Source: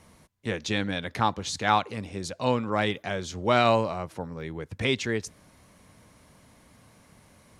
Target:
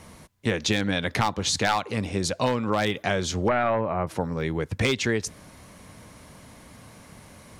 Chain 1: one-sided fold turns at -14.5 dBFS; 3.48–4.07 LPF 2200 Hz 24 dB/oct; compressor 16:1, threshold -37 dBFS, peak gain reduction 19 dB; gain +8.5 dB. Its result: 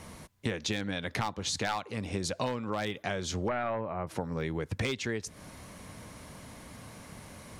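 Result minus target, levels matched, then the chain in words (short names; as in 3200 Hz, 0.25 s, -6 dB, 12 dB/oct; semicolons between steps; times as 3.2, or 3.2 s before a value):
compressor: peak gain reduction +9 dB
one-sided fold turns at -14.5 dBFS; 3.48–4.07 LPF 2200 Hz 24 dB/oct; compressor 16:1, threshold -27.5 dBFS, peak gain reduction 10.5 dB; gain +8.5 dB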